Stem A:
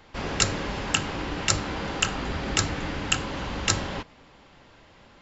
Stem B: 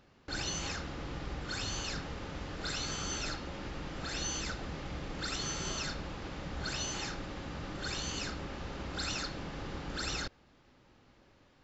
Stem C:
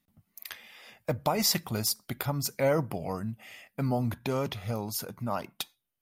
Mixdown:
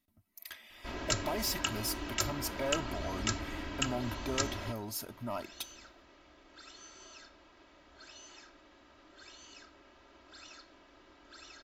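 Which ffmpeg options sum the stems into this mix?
-filter_complex "[0:a]adelay=700,volume=0.282[s0];[1:a]bass=f=250:g=-13,treble=f=4000:g=-2,adelay=1350,volume=0.158[s1];[2:a]asoftclip=type=tanh:threshold=0.0501,volume=0.562[s2];[s0][s1][s2]amix=inputs=3:normalize=0,aecho=1:1:3.1:0.64"

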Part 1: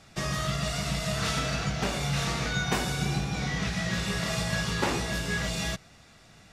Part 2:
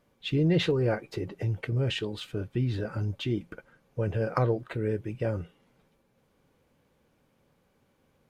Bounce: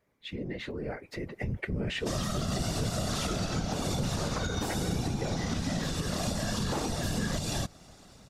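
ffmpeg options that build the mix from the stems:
-filter_complex "[0:a]equalizer=f=2100:t=o:w=1.2:g=-11.5,adelay=1900,volume=1.33[s0];[1:a]equalizer=f=160:t=o:w=0.33:g=-4,equalizer=f=2000:t=o:w=0.33:g=9,equalizer=f=3150:t=o:w=0.33:g=-4,acompressor=threshold=0.0316:ratio=4,volume=1[s1];[s0][s1]amix=inputs=2:normalize=0,dynaudnorm=f=740:g=3:m=2.51,afftfilt=real='hypot(re,im)*cos(2*PI*random(0))':imag='hypot(re,im)*sin(2*PI*random(1))':win_size=512:overlap=0.75,alimiter=limit=0.0841:level=0:latency=1:release=156"

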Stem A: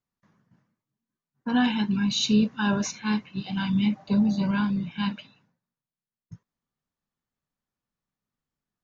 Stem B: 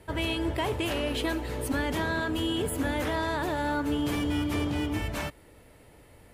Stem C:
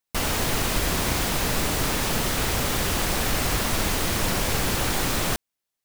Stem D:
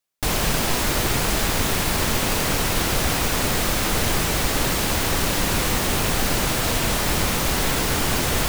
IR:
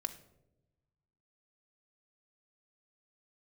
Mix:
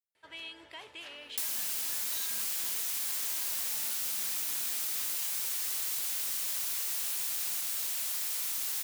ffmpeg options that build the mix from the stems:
-filter_complex "[0:a]volume=0.531[s0];[1:a]lowpass=3700,adelay=150,volume=0.944[s1];[2:a]adelay=2250,volume=0.75[s2];[3:a]adelay=1150,volume=0.794[s3];[s0][s1][s2][s3]amix=inputs=4:normalize=0,aderivative,acompressor=threshold=0.0282:ratio=6"

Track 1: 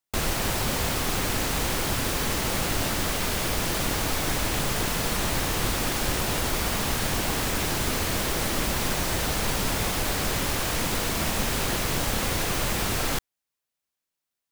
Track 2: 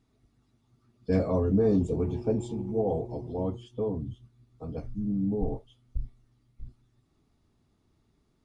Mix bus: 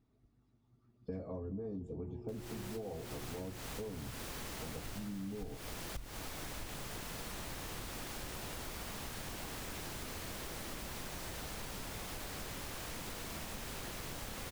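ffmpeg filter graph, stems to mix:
-filter_complex "[0:a]adelay=2150,volume=0.2[s0];[1:a]highshelf=f=2100:g=-8.5,volume=0.631,asplit=3[s1][s2][s3];[s2]volume=0.075[s4];[s3]apad=whole_len=734836[s5];[s0][s5]sidechaincompress=threshold=0.02:ratio=8:attack=34:release=315[s6];[s4]aecho=0:1:217:1[s7];[s6][s1][s7]amix=inputs=3:normalize=0,acompressor=threshold=0.01:ratio=6"

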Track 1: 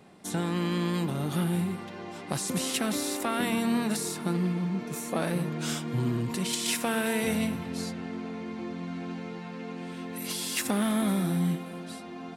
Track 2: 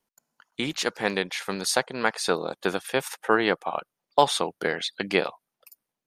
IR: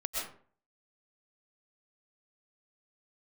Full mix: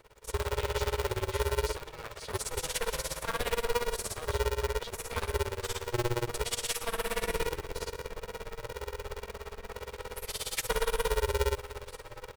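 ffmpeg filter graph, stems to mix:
-filter_complex "[0:a]tremolo=f=17:d=0.97,volume=0.668,asplit=2[s0][s1];[s1]volume=0.15[s2];[1:a]acompressor=threshold=0.0251:ratio=6,volume=0.251[s3];[2:a]atrim=start_sample=2205[s4];[s2][s4]afir=irnorm=-1:irlink=0[s5];[s0][s3][s5]amix=inputs=3:normalize=0,aecho=1:1:0.9:0.84,aeval=exprs='val(0)*sgn(sin(2*PI*240*n/s))':c=same"

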